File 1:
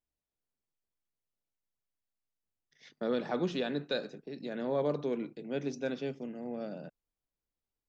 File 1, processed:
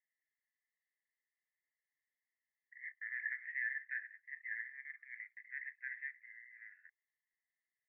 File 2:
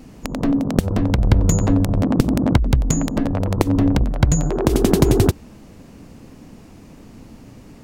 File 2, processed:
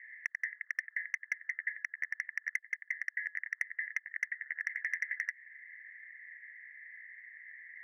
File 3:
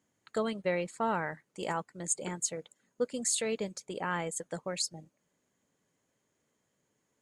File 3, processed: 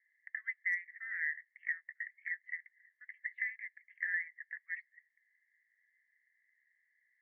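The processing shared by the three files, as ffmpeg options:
ffmpeg -i in.wav -filter_complex "[0:a]asuperpass=centerf=1900:order=8:qfactor=4.8,asplit=2[link_01][link_02];[link_02]aeval=exprs='0.02*(abs(mod(val(0)/0.02+3,4)-2)-1)':channel_layout=same,volume=-9dB[link_03];[link_01][link_03]amix=inputs=2:normalize=0,acompressor=threshold=-48dB:ratio=2.5,volume=13dB" out.wav

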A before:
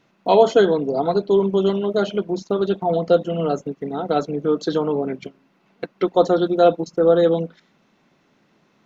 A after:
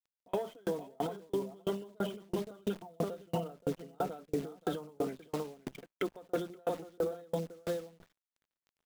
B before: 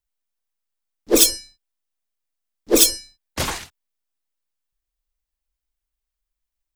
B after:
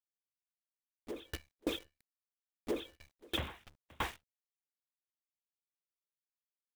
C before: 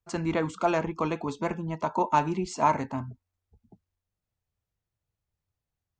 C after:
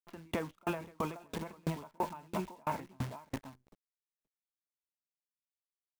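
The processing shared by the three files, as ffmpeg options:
ffmpeg -i in.wav -af "acontrast=20,aresample=8000,aresample=44100,acompressor=threshold=-17dB:ratio=5,aresample=16000,aeval=exprs='sgn(val(0))*max(abs(val(0))-0.00282,0)':channel_layout=same,aresample=44100,adynamicequalizer=threshold=0.0141:dfrequency=340:dqfactor=2.8:tfrequency=340:tqfactor=2.8:attack=5:release=100:ratio=0.375:range=2:mode=cutabove:tftype=bell,highpass=41,equalizer=frequency=72:width=7.3:gain=12,aecho=1:1:524:0.501,acrusher=bits=7:dc=4:mix=0:aa=0.000001,alimiter=limit=-21dB:level=0:latency=1:release=45,aeval=exprs='val(0)*pow(10,-37*if(lt(mod(3*n/s,1),2*abs(3)/1000),1-mod(3*n/s,1)/(2*abs(3)/1000),(mod(3*n/s,1)-2*abs(3)/1000)/(1-2*abs(3)/1000))/20)':channel_layout=same" out.wav

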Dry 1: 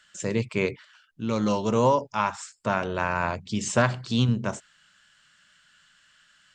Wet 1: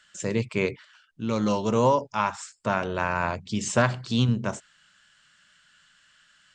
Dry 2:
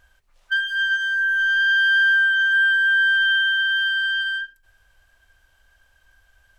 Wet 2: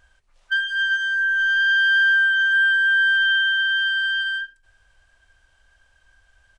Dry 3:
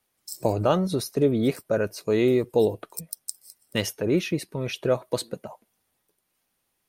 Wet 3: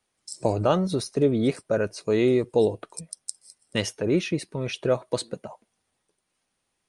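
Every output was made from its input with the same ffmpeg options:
ffmpeg -i in.wav -af "aresample=22050,aresample=44100" out.wav

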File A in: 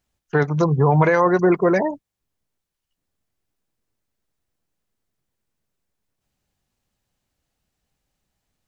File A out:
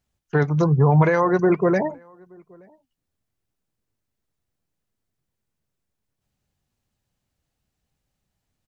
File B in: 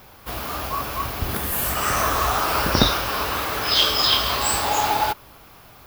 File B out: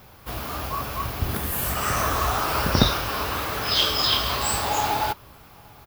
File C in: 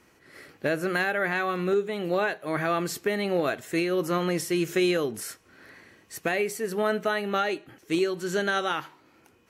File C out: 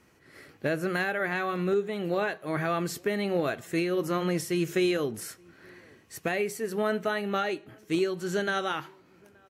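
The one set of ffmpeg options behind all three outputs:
ffmpeg -i in.wav -filter_complex "[0:a]equalizer=frequency=110:width_type=o:width=2.2:gain=5,flanger=delay=1.5:depth=1.5:regen=-90:speed=1.1:shape=sinusoidal,asplit=2[link_01][link_02];[link_02]adelay=874.6,volume=-29dB,highshelf=frequency=4000:gain=-19.7[link_03];[link_01][link_03]amix=inputs=2:normalize=0,volume=1.5dB" out.wav

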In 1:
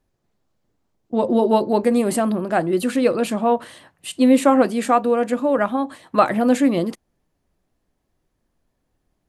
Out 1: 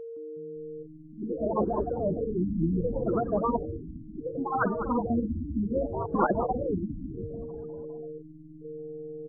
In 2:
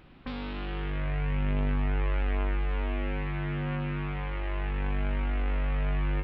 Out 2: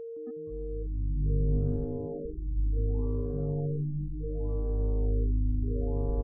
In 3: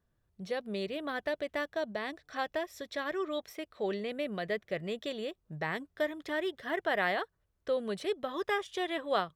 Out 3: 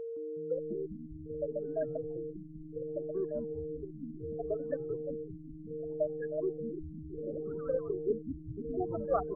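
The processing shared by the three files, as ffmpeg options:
ffmpeg -i in.wav -filter_complex "[0:a]afftfilt=real='re*lt(hypot(re,im),0.631)':imag='im*lt(hypot(re,im),0.631)':win_size=1024:overlap=0.75,agate=range=-18dB:threshold=-55dB:ratio=16:detection=peak,acrossover=split=5700[link_01][link_02];[link_02]acompressor=threshold=-59dB:ratio=4:attack=1:release=60[link_03];[link_01][link_03]amix=inputs=2:normalize=0,afftfilt=real='re*gte(hypot(re,im),0.178)':imag='im*gte(hypot(re,im),0.178)':win_size=1024:overlap=0.75,aresample=16000,aeval=exprs='sgn(val(0))*max(abs(val(0))-0.00188,0)':channel_layout=same,aresample=44100,aeval=exprs='val(0)+0.0112*sin(2*PI*460*n/s)':channel_layout=same,asplit=2[link_04][link_05];[link_05]asplit=8[link_06][link_07][link_08][link_09][link_10][link_11][link_12][link_13];[link_06]adelay=199,afreqshift=-150,volume=-9dB[link_14];[link_07]adelay=398,afreqshift=-300,volume=-12.9dB[link_15];[link_08]adelay=597,afreqshift=-450,volume=-16.8dB[link_16];[link_09]adelay=796,afreqshift=-600,volume=-20.6dB[link_17];[link_10]adelay=995,afreqshift=-750,volume=-24.5dB[link_18];[link_11]adelay=1194,afreqshift=-900,volume=-28.4dB[link_19];[link_12]adelay=1393,afreqshift=-1050,volume=-32.3dB[link_20];[link_13]adelay=1592,afreqshift=-1200,volume=-36.1dB[link_21];[link_14][link_15][link_16][link_17][link_18][link_19][link_20][link_21]amix=inputs=8:normalize=0[link_22];[link_04][link_22]amix=inputs=2:normalize=0,afftfilt=real='re*lt(b*sr/1024,320*pow(1800/320,0.5+0.5*sin(2*PI*0.68*pts/sr)))':imag='im*lt(b*sr/1024,320*pow(1800/320,0.5+0.5*sin(2*PI*0.68*pts/sr)))':win_size=1024:overlap=0.75,volume=2dB" out.wav

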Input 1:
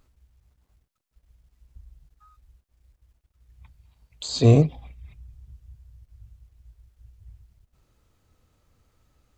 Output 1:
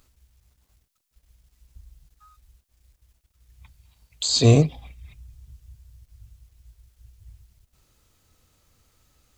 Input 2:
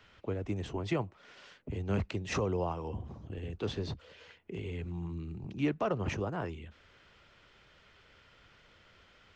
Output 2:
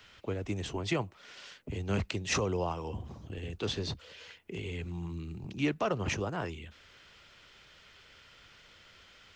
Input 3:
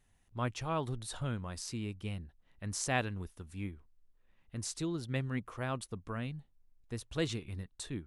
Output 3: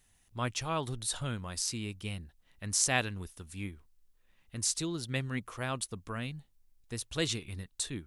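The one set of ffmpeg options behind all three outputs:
ffmpeg -i in.wav -af "highshelf=frequency=2500:gain=11" out.wav

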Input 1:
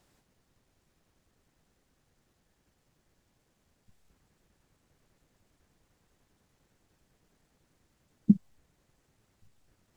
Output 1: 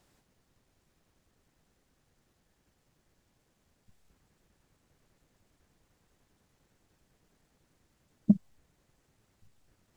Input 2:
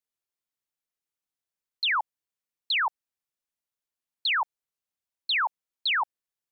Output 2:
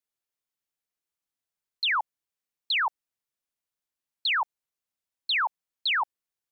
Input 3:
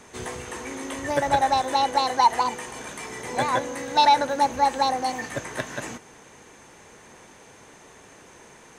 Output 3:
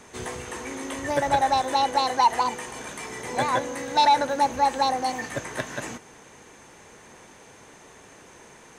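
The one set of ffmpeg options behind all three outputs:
ffmpeg -i in.wav -af "asoftclip=type=tanh:threshold=-8.5dB" out.wav

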